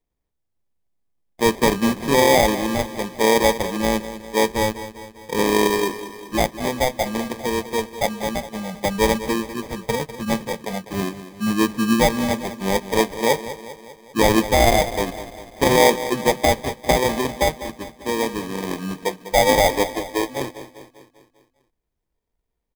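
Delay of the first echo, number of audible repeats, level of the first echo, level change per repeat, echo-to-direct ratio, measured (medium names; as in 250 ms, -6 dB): 199 ms, 5, -13.5 dB, -5.0 dB, -12.0 dB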